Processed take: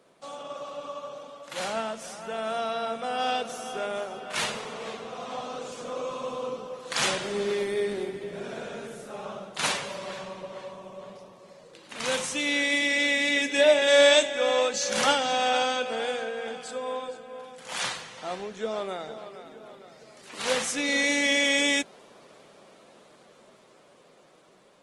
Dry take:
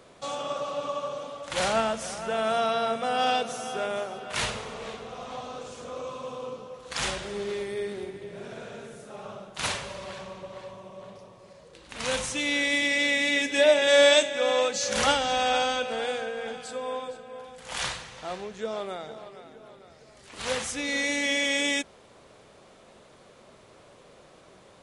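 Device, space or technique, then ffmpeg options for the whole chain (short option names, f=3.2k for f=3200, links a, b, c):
video call: -af "highpass=f=150:w=0.5412,highpass=f=150:w=1.3066,dynaudnorm=f=990:g=9:m=13.5dB,volume=-6dB" -ar 48000 -c:a libopus -b:a 24k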